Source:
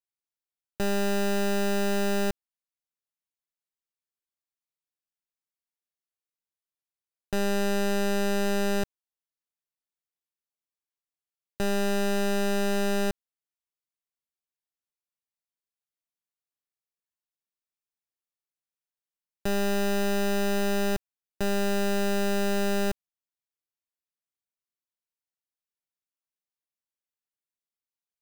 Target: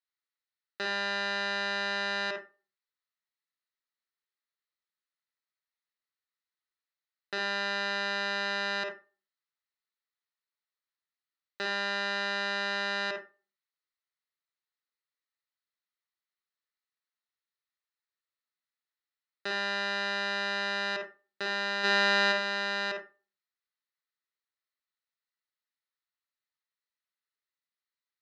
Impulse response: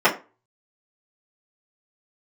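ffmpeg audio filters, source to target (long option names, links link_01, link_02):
-filter_complex "[0:a]asplit=3[link_01][link_02][link_03];[link_01]afade=type=out:start_time=21.83:duration=0.02[link_04];[link_02]acontrast=80,afade=type=in:start_time=21.83:duration=0.02,afade=type=out:start_time=22.31:duration=0.02[link_05];[link_03]afade=type=in:start_time=22.31:duration=0.02[link_06];[link_04][link_05][link_06]amix=inputs=3:normalize=0,highpass=460,equalizer=frequency=710:width_type=q:width=4:gain=-8,equalizer=frequency=1300:width_type=q:width=4:gain=6,equalizer=frequency=1900:width_type=q:width=4:gain=9,equalizer=frequency=4100:width_type=q:width=4:gain=10,lowpass=frequency=5200:width=0.5412,lowpass=frequency=5200:width=1.3066,asplit=2[link_07][link_08];[1:a]atrim=start_sample=2205,adelay=46[link_09];[link_08][link_09]afir=irnorm=-1:irlink=0,volume=-23dB[link_10];[link_07][link_10]amix=inputs=2:normalize=0,volume=-3dB"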